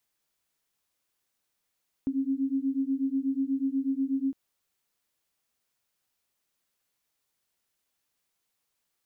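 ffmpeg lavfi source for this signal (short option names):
-f lavfi -i "aevalsrc='0.0376*(sin(2*PI*266*t)+sin(2*PI*274.2*t))':d=2.26:s=44100"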